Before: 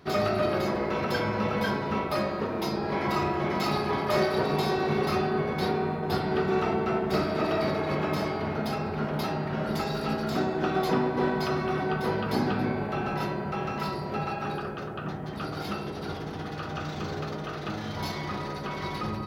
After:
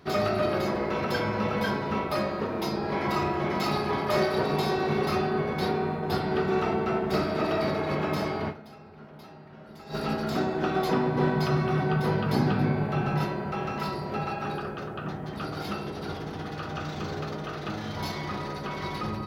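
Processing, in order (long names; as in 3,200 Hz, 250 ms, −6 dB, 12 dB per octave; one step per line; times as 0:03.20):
0:08.49–0:09.95: duck −17.5 dB, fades 0.33 s exponential
0:11.07–0:13.24: parametric band 140 Hz +10 dB 0.58 octaves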